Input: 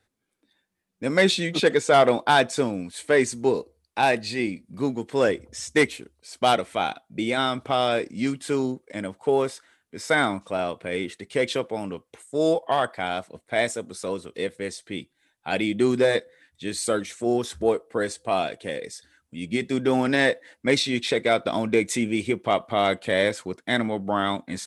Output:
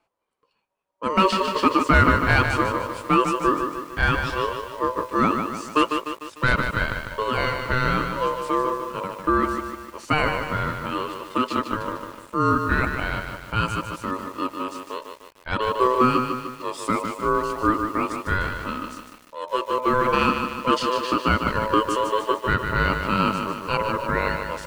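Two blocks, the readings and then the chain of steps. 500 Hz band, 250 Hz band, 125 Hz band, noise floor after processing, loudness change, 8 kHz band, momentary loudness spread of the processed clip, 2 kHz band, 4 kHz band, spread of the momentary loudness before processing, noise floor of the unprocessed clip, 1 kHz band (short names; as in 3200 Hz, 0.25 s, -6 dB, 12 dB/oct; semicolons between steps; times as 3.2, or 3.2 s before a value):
-3.0 dB, +0.5 dB, +6.5 dB, -52 dBFS, +1.5 dB, -6.5 dB, 11 LU, +2.5 dB, -2.5 dB, 12 LU, -76 dBFS, +5.5 dB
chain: high shelf 2700 Hz -11 dB; ring modulator 760 Hz; lo-fi delay 0.15 s, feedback 55%, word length 8-bit, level -6 dB; gain +4 dB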